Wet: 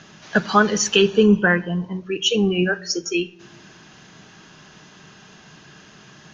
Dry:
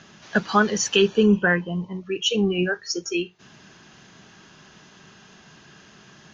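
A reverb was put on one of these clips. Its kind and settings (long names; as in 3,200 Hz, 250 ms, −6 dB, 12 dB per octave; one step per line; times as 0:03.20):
rectangular room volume 3,400 cubic metres, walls furnished, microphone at 0.49 metres
level +3 dB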